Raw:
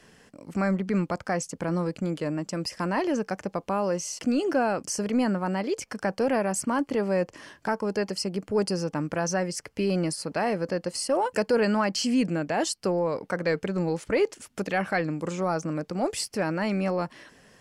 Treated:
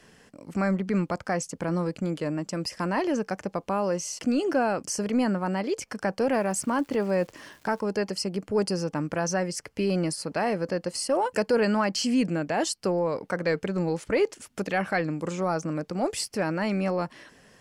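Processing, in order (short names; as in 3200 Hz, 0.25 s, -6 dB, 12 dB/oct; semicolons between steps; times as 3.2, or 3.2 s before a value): 6.29–7.8 crackle 420/s -44 dBFS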